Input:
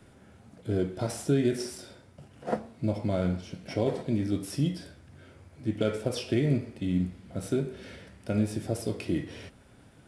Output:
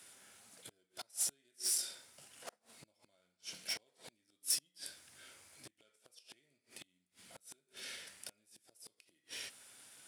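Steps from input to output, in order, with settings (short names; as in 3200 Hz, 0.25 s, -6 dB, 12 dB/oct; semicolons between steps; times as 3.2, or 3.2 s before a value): flipped gate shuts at -23 dBFS, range -35 dB; one-sided clip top -37 dBFS; differentiator; gain +11 dB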